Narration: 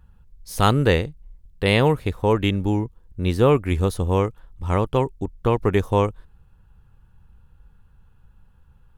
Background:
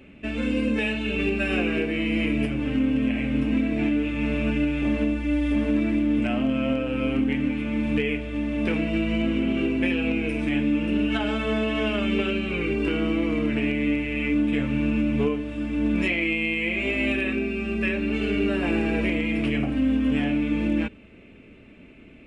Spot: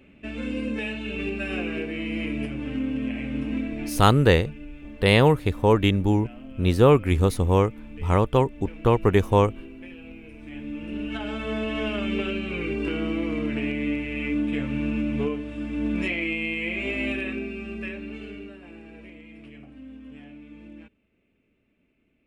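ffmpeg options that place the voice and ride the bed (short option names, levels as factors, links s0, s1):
-filter_complex "[0:a]adelay=3400,volume=1.06[s0];[1:a]volume=3.35,afade=t=out:st=3.61:d=0.58:silence=0.211349,afade=t=in:st=10.38:d=1.36:silence=0.16788,afade=t=out:st=16.98:d=1.61:silence=0.125893[s1];[s0][s1]amix=inputs=2:normalize=0"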